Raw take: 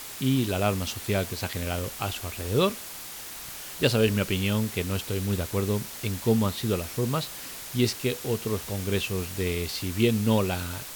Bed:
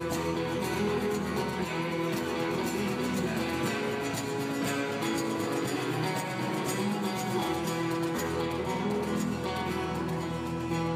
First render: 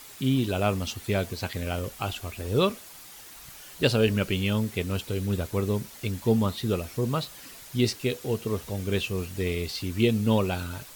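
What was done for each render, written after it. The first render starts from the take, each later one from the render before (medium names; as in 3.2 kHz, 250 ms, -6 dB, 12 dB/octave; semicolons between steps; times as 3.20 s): noise reduction 8 dB, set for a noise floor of -40 dBFS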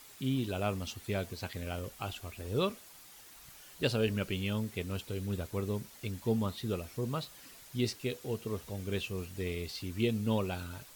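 trim -8 dB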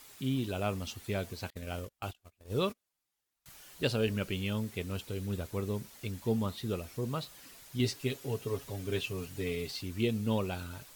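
1.50–3.46 s: gate -40 dBFS, range -32 dB; 7.79–9.81 s: comb 7.2 ms, depth 69%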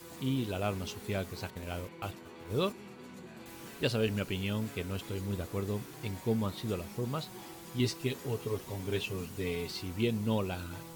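add bed -18.5 dB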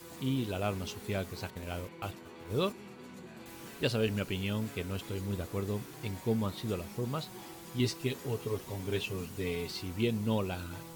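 no audible change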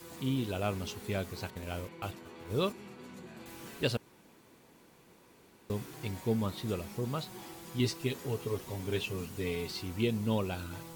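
3.97–5.70 s: room tone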